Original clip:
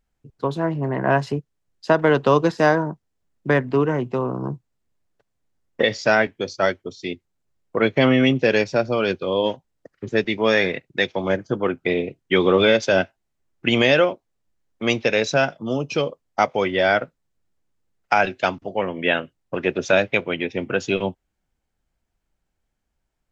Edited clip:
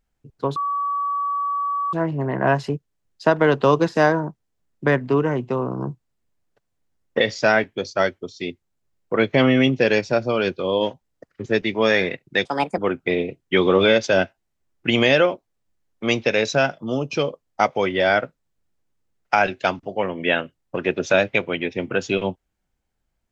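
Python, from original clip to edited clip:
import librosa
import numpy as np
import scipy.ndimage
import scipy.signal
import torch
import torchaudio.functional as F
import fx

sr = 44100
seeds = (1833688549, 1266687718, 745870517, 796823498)

y = fx.edit(x, sr, fx.insert_tone(at_s=0.56, length_s=1.37, hz=1140.0, db=-20.5),
    fx.speed_span(start_s=11.08, length_s=0.49, speed=1.48), tone=tone)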